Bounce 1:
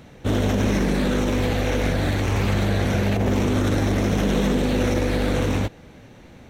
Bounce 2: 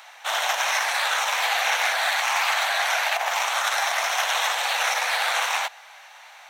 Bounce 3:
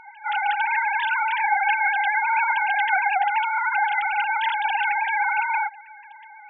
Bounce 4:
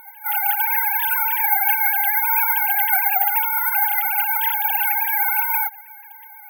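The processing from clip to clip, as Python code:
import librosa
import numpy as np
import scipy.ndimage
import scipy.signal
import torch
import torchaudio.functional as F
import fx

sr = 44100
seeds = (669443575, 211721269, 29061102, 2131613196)

y1 = scipy.signal.sosfilt(scipy.signal.butter(8, 730.0, 'highpass', fs=sr, output='sos'), x)
y1 = F.gain(torch.from_numpy(y1), 8.5).numpy()
y2 = fx.sine_speech(y1, sr)
y2 = F.gain(torch.from_numpy(y2), 1.5).numpy()
y3 = (np.kron(scipy.signal.resample_poly(y2, 1, 3), np.eye(3)[0]) * 3)[:len(y2)]
y3 = F.gain(torch.from_numpy(y3), -2.0).numpy()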